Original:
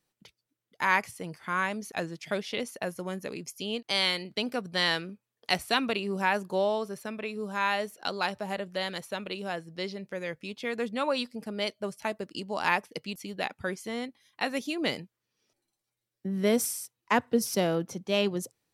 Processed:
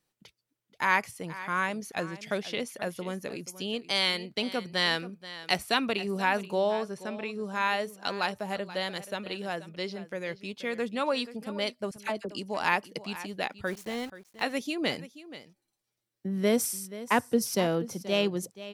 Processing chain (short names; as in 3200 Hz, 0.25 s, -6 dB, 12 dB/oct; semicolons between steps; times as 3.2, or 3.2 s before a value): 6.6–7.56 LPF 9000 Hz 12 dB/oct; 11.91–12.31 dispersion lows, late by 49 ms, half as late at 1200 Hz; 13.67–14.44 sample gate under -42 dBFS; echo 0.48 s -15.5 dB